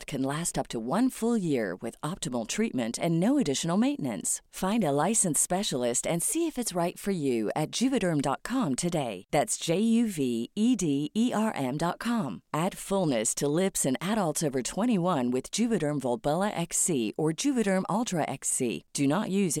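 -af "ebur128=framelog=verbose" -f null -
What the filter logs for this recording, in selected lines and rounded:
Integrated loudness:
  I:         -27.9 LUFS
  Threshold: -37.9 LUFS
Loudness range:
  LRA:         1.9 LU
  Threshold: -47.8 LUFS
  LRA low:   -28.6 LUFS
  LRA high:  -26.7 LUFS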